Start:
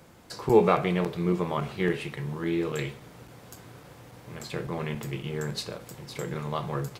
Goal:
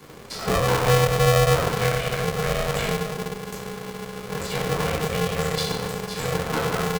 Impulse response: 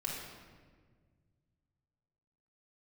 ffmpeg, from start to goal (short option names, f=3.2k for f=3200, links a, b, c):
-filter_complex "[0:a]aecho=1:1:1.1:0.97[a];[1:a]atrim=start_sample=2205,asetrate=74970,aresample=44100[b];[a][b]afir=irnorm=-1:irlink=0,acompressor=threshold=-29dB:ratio=3,asettb=1/sr,asplit=3[c][d][e];[c]atrim=end=0.824[f];[d]atrim=start=0.82:end=1.68,asetpts=PTS-STARTPTS,afade=t=in:d=0.004:c=qsin,afade=t=out:st=0.856:d=0.004:c=qsin,equalizer=f=240:t=o:w=1.1:g=6[g];[e]atrim=start=1.676[h];[f][g]acrossfade=d=0.004:c1=hsin:c2=qsin[i];[i][h]acrossfade=d=0.004:c1=qsin:c2=hsin,aeval=exprs='val(0)*sgn(sin(2*PI*310*n/s))':c=same,volume=8dB"